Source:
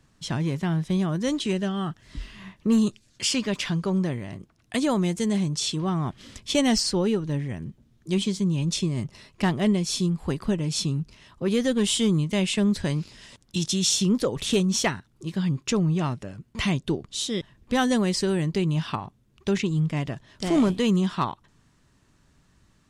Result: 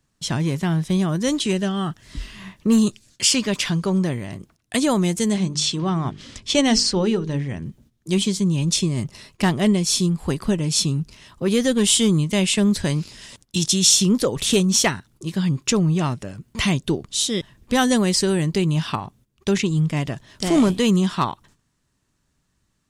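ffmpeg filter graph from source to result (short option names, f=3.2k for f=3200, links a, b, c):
-filter_complex "[0:a]asettb=1/sr,asplit=3[a][b][c];[a]atrim=end=5.344[d];[b]atrim=start=5.34:end=7.65,asetpts=PTS-STARTPTS,afade=t=in:d=0.004:c=qsin,afade=t=out:st=2.306:d=0.004:c=qsin,lowpass=6.4k,bandreject=f=50:t=h:w=6,bandreject=f=100:t=h:w=6,bandreject=f=150:t=h:w=6,bandreject=f=200:t=h:w=6,bandreject=f=250:t=h:w=6,bandreject=f=300:t=h:w=6,bandreject=f=350:t=h:w=6,bandreject=f=400:t=h:w=6,bandreject=f=450:t=h:w=6[e];[c]atrim=start=7.646[f];[d][e]acrossfade=d=0.004:c1=hsin:c2=qsin[g];[g][f]acrossfade=d=0.004:c1=qsin:c2=hsin,agate=range=-13dB:threshold=-55dB:ratio=16:detection=peak,highshelf=f=6.2k:g=9,volume=4dB"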